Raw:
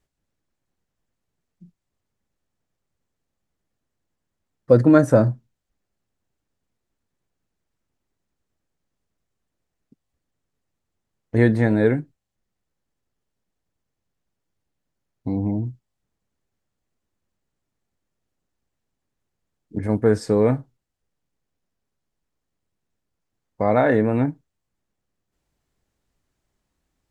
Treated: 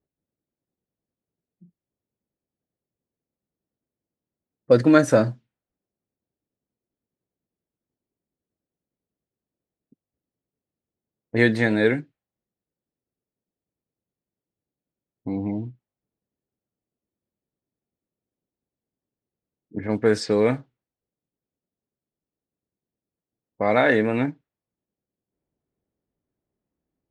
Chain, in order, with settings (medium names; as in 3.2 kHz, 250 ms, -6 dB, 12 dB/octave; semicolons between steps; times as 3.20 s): level-controlled noise filter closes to 540 Hz, open at -14 dBFS; frequency weighting D; trim -1 dB